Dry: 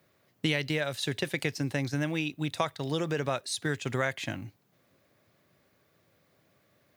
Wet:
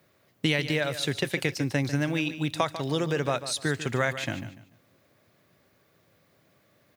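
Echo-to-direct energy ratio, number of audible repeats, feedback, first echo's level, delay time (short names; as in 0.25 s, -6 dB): -12.0 dB, 2, 26%, -12.5 dB, 0.146 s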